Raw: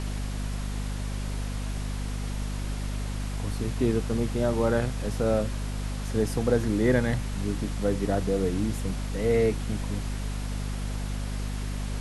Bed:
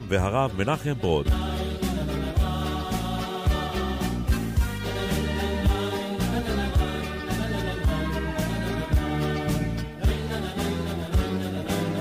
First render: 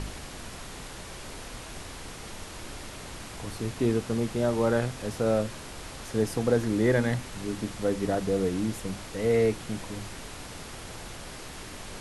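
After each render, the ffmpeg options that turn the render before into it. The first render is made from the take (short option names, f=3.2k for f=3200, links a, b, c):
-af "bandreject=f=50:t=h:w=4,bandreject=f=100:t=h:w=4,bandreject=f=150:t=h:w=4,bandreject=f=200:t=h:w=4,bandreject=f=250:t=h:w=4"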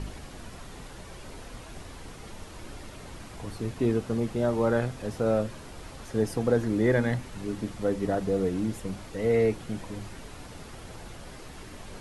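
-af "afftdn=nr=7:nf=-42"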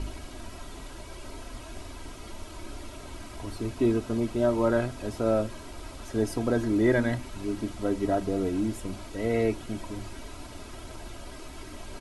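-af "bandreject=f=1.8k:w=9.1,aecho=1:1:3.1:0.58"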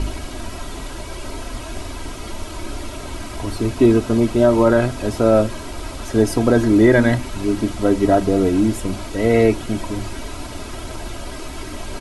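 -af "volume=11.5dB,alimiter=limit=-3dB:level=0:latency=1"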